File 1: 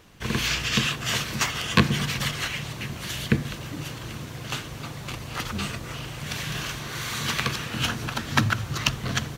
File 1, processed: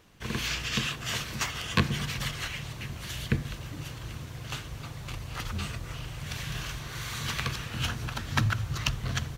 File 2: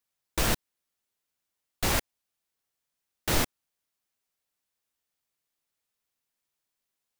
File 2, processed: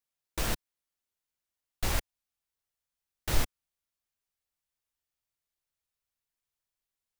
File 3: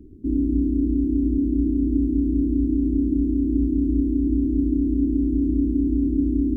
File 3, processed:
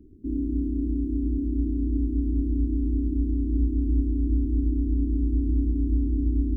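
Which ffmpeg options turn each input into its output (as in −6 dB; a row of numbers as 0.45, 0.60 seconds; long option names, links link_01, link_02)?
-af "asubboost=boost=3.5:cutoff=110,volume=-6dB"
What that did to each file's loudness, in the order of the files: −5.5, −5.5, −4.5 LU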